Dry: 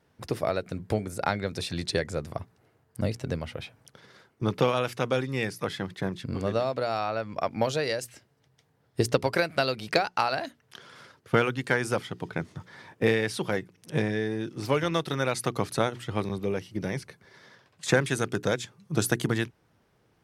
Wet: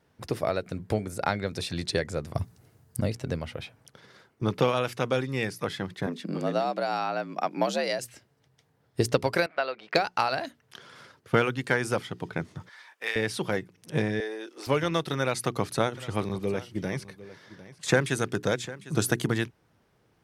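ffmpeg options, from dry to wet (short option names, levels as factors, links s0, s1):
-filter_complex "[0:a]asettb=1/sr,asplit=3[s0][s1][s2];[s0]atrim=end=2.354[s3];[s1]atrim=start=2.35:end=3,asetpts=PTS-STARTPTS,afade=t=in:d=0.004:c=qsin,afade=t=out:st=0.646:d=0.004:c=qsin,bass=f=250:g=10,treble=f=4000:g=12[s4];[s2]atrim=start=2.996[s5];[s3][s4]acrossfade=d=0.004:c1=hsin:c2=qsin[s6];[s6][s5]acrossfade=d=0.004:c1=qsin:c2=hsin,asplit=3[s7][s8][s9];[s7]afade=t=out:st=6.06:d=0.02[s10];[s8]afreqshift=67,afade=t=in:st=6.06:d=0.02,afade=t=out:st=7.98:d=0.02[s11];[s9]afade=t=in:st=7.98:d=0.02[s12];[s10][s11][s12]amix=inputs=3:normalize=0,asettb=1/sr,asplit=3[s13][s14][s15];[s13]atrim=end=9.464[s16];[s14]atrim=start=9.46:end=9.95,asetpts=PTS-STARTPTS,afade=t=in:d=0.004:c=qsin,afade=t=out:st=0.486:d=0.004:c=qsin,highpass=560,lowpass=2200[s17];[s15]atrim=start=9.946[s18];[s16][s17]acrossfade=d=0.004:c1=hsin:c2=qsin[s19];[s19][s18]acrossfade=d=0.004:c1=qsin:c2=hsin,asettb=1/sr,asplit=3[s20][s21][s22];[s20]atrim=end=12.694[s23];[s21]atrim=start=12.69:end=13.16,asetpts=PTS-STARTPTS,afade=t=in:d=0.004:c=qsin,afade=t=out:st=0.466:d=0.004:c=qsin,highpass=1200[s24];[s22]atrim=start=13.156[s25];[s23][s24]acrossfade=d=0.004:c1=hsin:c2=qsin[s26];[s26][s25]acrossfade=d=0.004:c1=qsin:c2=hsin,asettb=1/sr,asplit=3[s27][s28][s29];[s27]atrim=end=14.204[s30];[s28]atrim=start=14.2:end=14.67,asetpts=PTS-STARTPTS,afade=t=in:d=0.004:c=qsin,afade=t=out:st=0.466:d=0.004:c=qsin,highpass=f=400:w=0.5412,highpass=f=400:w=1.3066[s31];[s29]atrim=start=14.666[s32];[s30][s31]acrossfade=d=0.004:c1=hsin:c2=qsin[s33];[s33][s32]acrossfade=d=0.004:c1=qsin:c2=hsin,asettb=1/sr,asplit=3[s34][s35][s36];[s34]atrim=end=15.224[s37];[s35]atrim=start=15.22:end=19.19,asetpts=PTS-STARTPTS,afade=t=in:d=0.004:c=qsin,afade=t=out:st=3.966:d=0.004:c=qsin,aecho=1:1:752:0.141,atrim=end_sample=175077[s38];[s36]atrim=start=19.186[s39];[s37][s38]acrossfade=d=0.004:c1=hsin:c2=qsin[s40];[s40][s39]acrossfade=d=0.004:c1=qsin:c2=hsin"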